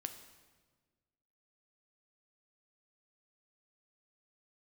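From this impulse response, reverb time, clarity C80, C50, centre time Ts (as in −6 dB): 1.5 s, 11.5 dB, 9.5 dB, 16 ms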